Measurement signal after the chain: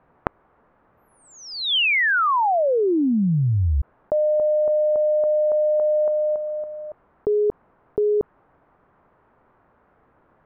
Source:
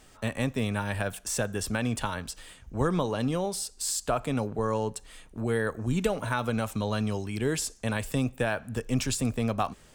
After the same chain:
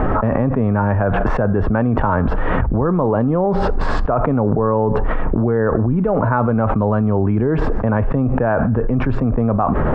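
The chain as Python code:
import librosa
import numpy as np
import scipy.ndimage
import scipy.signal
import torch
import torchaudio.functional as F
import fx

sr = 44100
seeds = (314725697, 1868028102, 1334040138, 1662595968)

y = scipy.signal.sosfilt(scipy.signal.butter(4, 1300.0, 'lowpass', fs=sr, output='sos'), x)
y = fx.env_flatten(y, sr, amount_pct=100)
y = y * librosa.db_to_amplitude(6.5)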